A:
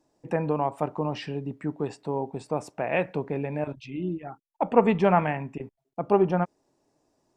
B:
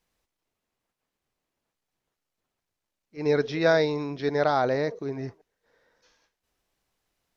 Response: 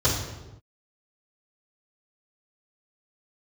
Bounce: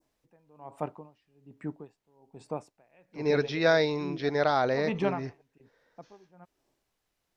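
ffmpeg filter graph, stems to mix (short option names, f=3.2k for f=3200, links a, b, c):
-filter_complex "[0:a]aeval=exprs='val(0)*pow(10,-33*(0.5-0.5*cos(2*PI*1.2*n/s))/20)':c=same,volume=-5.5dB[a];[1:a]volume=-2.5dB[b];[a][b]amix=inputs=2:normalize=0,adynamicequalizer=threshold=0.00631:dfrequency=2900:dqfactor=0.79:tfrequency=2900:tqfactor=0.79:attack=5:release=100:ratio=0.375:range=2:mode=boostabove:tftype=bell"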